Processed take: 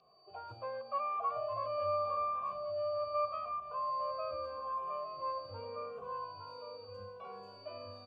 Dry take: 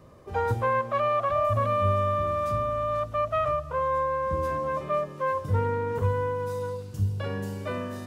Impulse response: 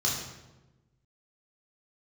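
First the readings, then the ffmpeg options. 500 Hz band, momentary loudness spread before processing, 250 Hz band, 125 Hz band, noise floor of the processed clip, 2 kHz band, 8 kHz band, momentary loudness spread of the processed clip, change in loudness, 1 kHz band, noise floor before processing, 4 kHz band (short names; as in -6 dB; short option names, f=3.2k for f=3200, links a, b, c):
-11.5 dB, 8 LU, under -20 dB, -27.5 dB, -54 dBFS, -18.5 dB, n/a, 14 LU, -11.0 dB, -9.5 dB, -41 dBFS, -5.0 dB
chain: -filter_complex "[0:a]equalizer=f=69:w=0.82:g=8.5,aeval=exprs='val(0)+0.0158*sin(2*PI*4600*n/s)':c=same,asplit=3[a][b][c];[a]bandpass=f=730:t=q:w=8,volume=0dB[d];[b]bandpass=f=1.09k:t=q:w=8,volume=-6dB[e];[c]bandpass=f=2.44k:t=q:w=8,volume=-9dB[f];[d][e][f]amix=inputs=3:normalize=0,asplit=2[g][h];[h]aecho=0:1:860|1720|2580|3440:0.501|0.165|0.0546|0.018[i];[g][i]amix=inputs=2:normalize=0,asplit=2[j][k];[k]adelay=2.2,afreqshift=-0.83[l];[j][l]amix=inputs=2:normalize=1"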